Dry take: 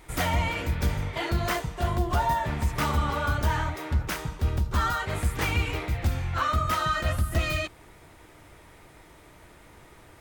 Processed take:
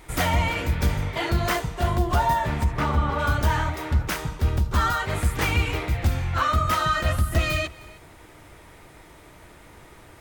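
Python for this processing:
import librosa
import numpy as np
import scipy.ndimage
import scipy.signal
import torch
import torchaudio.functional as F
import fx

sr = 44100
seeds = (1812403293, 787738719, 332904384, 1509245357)

y = fx.lowpass(x, sr, hz=1800.0, slope=6, at=(2.63, 3.18), fade=0.02)
y = y + 10.0 ** (-22.0 / 20.0) * np.pad(y, (int(309 * sr / 1000.0), 0))[:len(y)]
y = y * 10.0 ** (3.5 / 20.0)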